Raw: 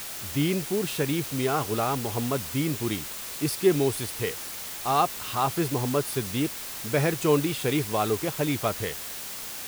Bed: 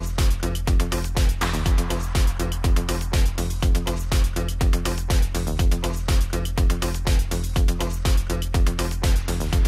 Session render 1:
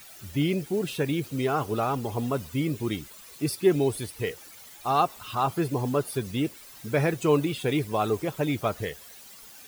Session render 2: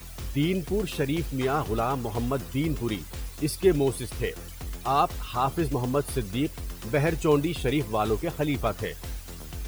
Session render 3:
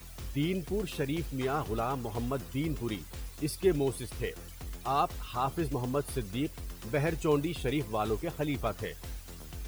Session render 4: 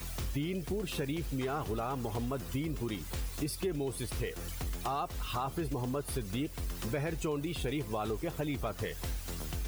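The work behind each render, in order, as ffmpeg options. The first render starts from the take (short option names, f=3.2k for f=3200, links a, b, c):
-af "afftdn=nr=14:nf=-37"
-filter_complex "[1:a]volume=-17dB[a];[0:a][a]amix=inputs=2:normalize=0"
-af "volume=-5.5dB"
-filter_complex "[0:a]asplit=2[a][b];[b]alimiter=level_in=2dB:limit=-24dB:level=0:latency=1:release=30,volume=-2dB,volume=2dB[c];[a][c]amix=inputs=2:normalize=0,acompressor=threshold=-33dB:ratio=4"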